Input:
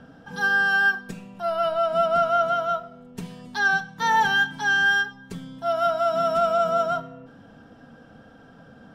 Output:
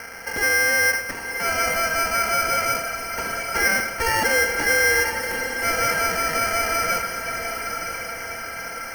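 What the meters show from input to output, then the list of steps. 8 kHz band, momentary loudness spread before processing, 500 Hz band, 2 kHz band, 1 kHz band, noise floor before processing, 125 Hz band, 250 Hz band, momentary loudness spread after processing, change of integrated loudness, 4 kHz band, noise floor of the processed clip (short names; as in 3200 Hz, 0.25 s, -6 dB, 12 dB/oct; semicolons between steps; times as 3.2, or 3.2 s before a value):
n/a, 19 LU, -2.0 dB, +2.0 dB, -1.0 dB, -50 dBFS, +2.0 dB, +1.5 dB, 11 LU, +1.0 dB, +4.5 dB, -33 dBFS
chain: per-bin compression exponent 0.6; low-pass opened by the level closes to 3000 Hz, open at -15.5 dBFS; Bessel high-pass 1300 Hz, order 8; bell 4300 Hz +8 dB 1.6 oct; in parallel at +2 dB: limiter -20 dBFS, peak gain reduction 10 dB; on the sum: sample-and-hold 12×; diffused feedback echo 1.002 s, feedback 52%, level -7 dB; gain -4 dB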